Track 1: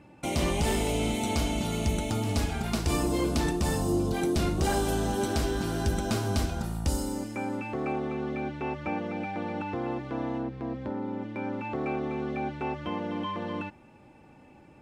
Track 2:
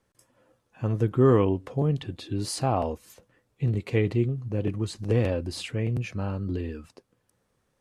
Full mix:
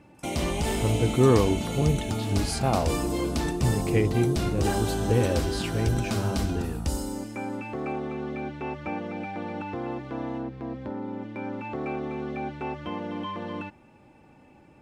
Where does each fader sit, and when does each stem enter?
-0.5 dB, 0.0 dB; 0.00 s, 0.00 s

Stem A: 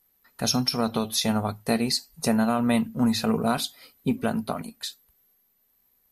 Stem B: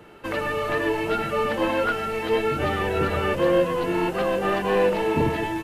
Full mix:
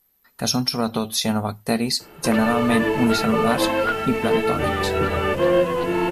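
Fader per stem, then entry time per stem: +2.5 dB, +2.0 dB; 0.00 s, 2.00 s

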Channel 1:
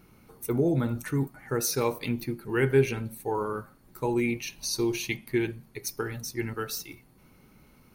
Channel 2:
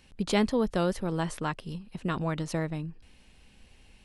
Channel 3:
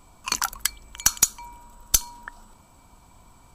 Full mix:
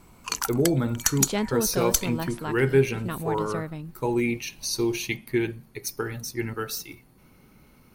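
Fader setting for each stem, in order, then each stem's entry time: +2.0 dB, -2.0 dB, -4.0 dB; 0.00 s, 1.00 s, 0.00 s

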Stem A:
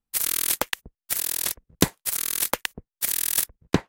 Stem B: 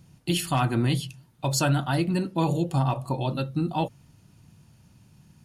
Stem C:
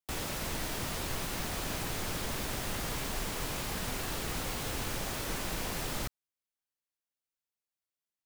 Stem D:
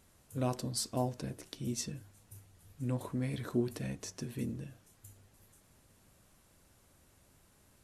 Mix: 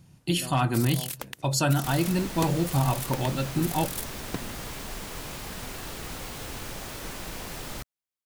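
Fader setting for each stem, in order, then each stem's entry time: -12.5 dB, -0.5 dB, -1.5 dB, -8.5 dB; 0.60 s, 0.00 s, 1.75 s, 0.00 s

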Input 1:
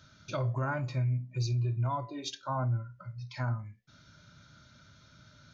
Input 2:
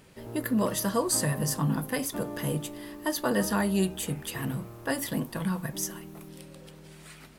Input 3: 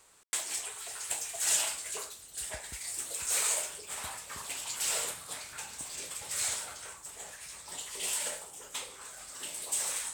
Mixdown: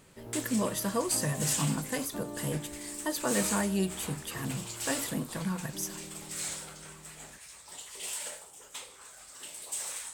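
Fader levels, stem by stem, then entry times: mute, -3.5 dB, -4.0 dB; mute, 0.00 s, 0.00 s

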